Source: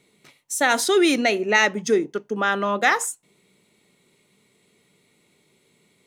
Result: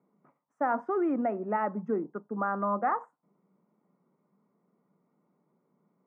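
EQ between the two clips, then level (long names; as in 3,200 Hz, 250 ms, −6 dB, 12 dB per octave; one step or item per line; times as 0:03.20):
elliptic band-pass filter 170–1,200 Hz, stop band 50 dB
high-frequency loss of the air 67 metres
parametric band 410 Hz −8.5 dB 0.71 octaves
−3.5 dB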